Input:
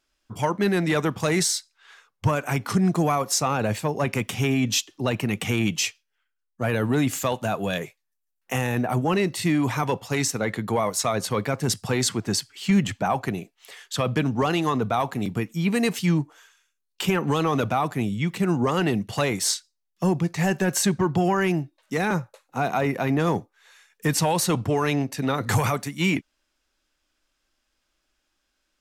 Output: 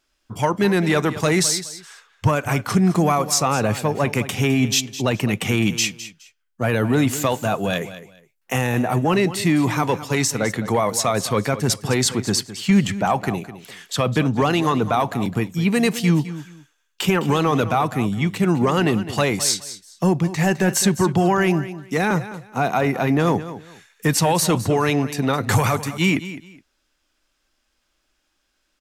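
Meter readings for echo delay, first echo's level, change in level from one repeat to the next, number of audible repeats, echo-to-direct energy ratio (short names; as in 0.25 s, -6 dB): 0.209 s, -14.0 dB, -13.0 dB, 2, -14.0 dB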